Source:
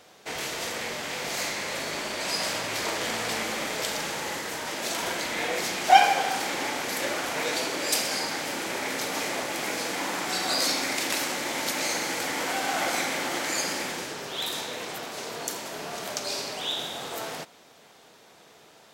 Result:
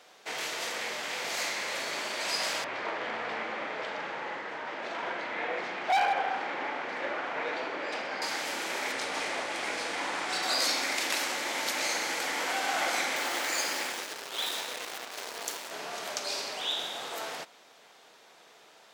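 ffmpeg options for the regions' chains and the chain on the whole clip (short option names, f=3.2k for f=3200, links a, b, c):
-filter_complex "[0:a]asettb=1/sr,asplit=3[a][b][c];[a]atrim=end=2.644[d];[b]atrim=start=2.64:end=8.22,asetpts=PTS-STARTPTS,afade=t=in:d=0.004:c=qsin,afade=t=out:st=5.576:d=0.004:c=qsin,lowpass=2k,volume=20dB,asoftclip=hard,volume=-20dB[e];[c]atrim=start=8.216[f];[d][e]acrossfade=d=0.004:c1=hsin:c2=qsin[g];[g][f]acrossfade=d=0.004:c1=qsin:c2=hsin,asettb=1/sr,asplit=3[h][i][j];[h]atrim=end=8.924[k];[i]atrim=start=8.92:end=10.43,asetpts=PTS-STARTPTS,afade=t=in:d=0.004:c=qsin,afade=t=out:st=1.506:d=0.004:c=qsin,equalizer=f=9.2k:t=o:w=0.3:g=9,adynamicsmooth=sensitivity=2.5:basefreq=5.4k,aeval=exprs='val(0)+0.00398*(sin(2*PI*50*n/s)+sin(2*PI*2*50*n/s)/2+sin(2*PI*3*50*n/s)/3+sin(2*PI*4*50*n/s)/4+sin(2*PI*5*50*n/s)/5)':c=same[l];[j]atrim=start=10.426[m];[k][l]acrossfade=d=0.004:c1=hsin:c2=qsin[n];[n][m]acrossfade=d=0.004:c1=qsin:c2=hsin,asettb=1/sr,asplit=3[o][p][q];[o]atrim=end=13.164[r];[p]atrim=start=13.16:end=15.71,asetpts=PTS-STARTPTS,afade=t=in:d=0.004:c=qsin,afade=t=out:st=2.546:d=0.004:c=qsin,highpass=200,acrusher=bits=6:dc=4:mix=0:aa=0.000001[s];[q]atrim=start=15.706[t];[r][s]acrossfade=d=0.004:c1=hsin:c2=qsin[u];[u][t]acrossfade=d=0.004:c1=qsin:c2=hsin,highpass=f=640:p=1,highshelf=f=7.3k:g=-7.5"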